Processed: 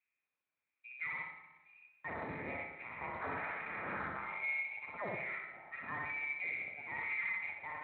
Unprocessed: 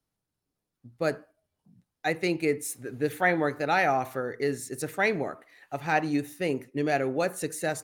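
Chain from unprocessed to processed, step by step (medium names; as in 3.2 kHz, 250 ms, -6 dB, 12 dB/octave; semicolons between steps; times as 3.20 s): 2.08–4.21 s: spectral peaks clipped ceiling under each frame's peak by 28 dB; thinning echo 63 ms, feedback 32%, high-pass 280 Hz, level -3 dB; transient shaper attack -2 dB, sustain +10 dB; saturation -18.5 dBFS, distortion -16 dB; compression 2:1, threshold -39 dBFS, peak gain reduction 9 dB; harmonic tremolo 1.1 Hz, depth 70%, crossover 970 Hz; high-pass 69 Hz 6 dB/octave; frequency inversion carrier 2.6 kHz; Schroeder reverb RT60 1.1 s, combs from 26 ms, DRR 5 dB; trim -3 dB; Speex 34 kbps 16 kHz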